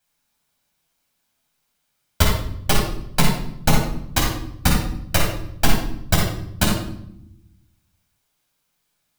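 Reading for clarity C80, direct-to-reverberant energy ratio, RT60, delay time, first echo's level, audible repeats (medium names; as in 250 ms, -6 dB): 5.5 dB, -3.5 dB, 0.75 s, no echo, no echo, no echo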